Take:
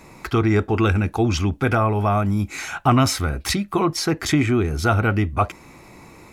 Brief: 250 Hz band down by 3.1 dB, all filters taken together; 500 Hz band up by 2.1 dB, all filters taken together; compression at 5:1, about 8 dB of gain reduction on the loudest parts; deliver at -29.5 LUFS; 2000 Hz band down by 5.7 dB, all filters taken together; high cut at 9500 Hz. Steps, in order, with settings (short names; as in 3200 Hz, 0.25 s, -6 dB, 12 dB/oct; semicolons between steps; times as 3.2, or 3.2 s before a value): LPF 9500 Hz; bell 250 Hz -6.5 dB; bell 500 Hz +6 dB; bell 2000 Hz -9 dB; compressor 5:1, threshold -22 dBFS; gain -2.5 dB